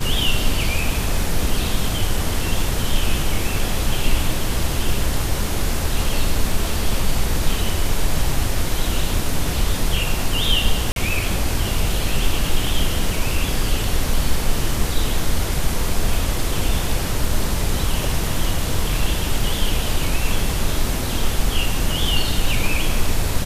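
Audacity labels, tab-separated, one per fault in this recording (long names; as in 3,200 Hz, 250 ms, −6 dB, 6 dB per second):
10.920000	10.960000	drop-out 42 ms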